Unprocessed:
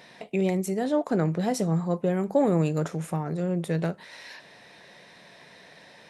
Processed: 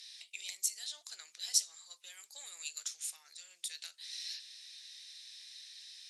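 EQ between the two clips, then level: ladder band-pass 5400 Hz, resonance 30%; tilt +4.5 dB/oct; +6.5 dB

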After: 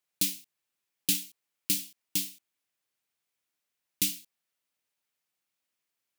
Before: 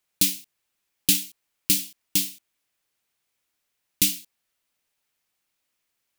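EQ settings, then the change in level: HPF 94 Hz; -7.0 dB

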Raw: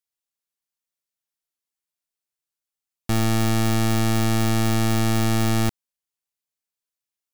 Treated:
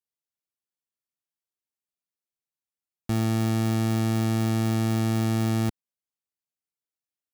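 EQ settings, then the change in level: HPF 100 Hz 6 dB/oct; low shelf 470 Hz +9 dB; -8.5 dB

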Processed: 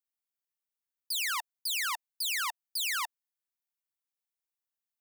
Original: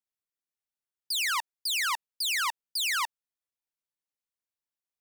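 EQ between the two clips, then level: elliptic high-pass 710 Hz; high shelf 11000 Hz +9.5 dB; -4.0 dB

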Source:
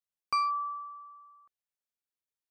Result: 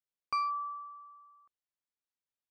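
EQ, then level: air absorption 70 m; -3.0 dB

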